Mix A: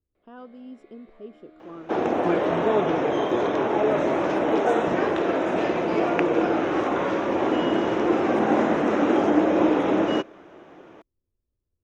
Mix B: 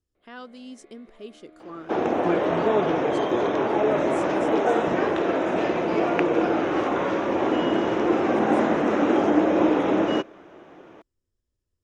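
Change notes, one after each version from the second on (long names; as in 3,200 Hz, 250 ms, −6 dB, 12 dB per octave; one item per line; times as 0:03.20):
speech: remove moving average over 21 samples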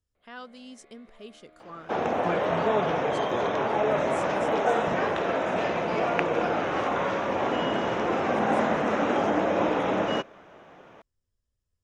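master: add parametric band 330 Hz −11 dB 0.65 octaves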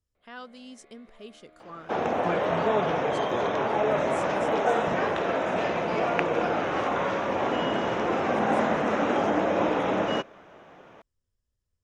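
nothing changed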